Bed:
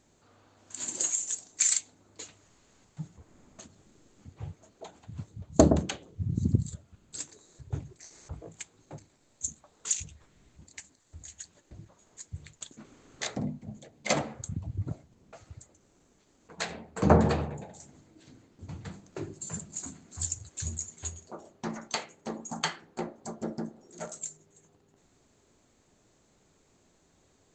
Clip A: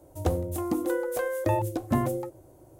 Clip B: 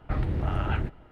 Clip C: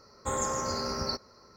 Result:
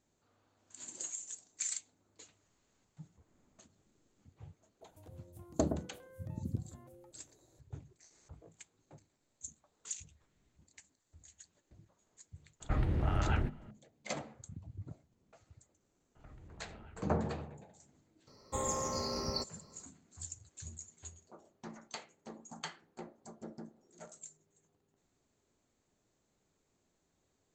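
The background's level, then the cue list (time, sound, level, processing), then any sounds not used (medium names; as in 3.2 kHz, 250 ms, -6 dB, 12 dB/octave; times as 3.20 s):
bed -12.5 dB
4.81 s: add A -16 dB + compression 5:1, threshold -39 dBFS
12.60 s: add B -4 dB
16.15 s: add B -11.5 dB + compression 4:1, threshold -43 dBFS
18.27 s: add C -4 dB + peaking EQ 1.5 kHz -13.5 dB 0.38 oct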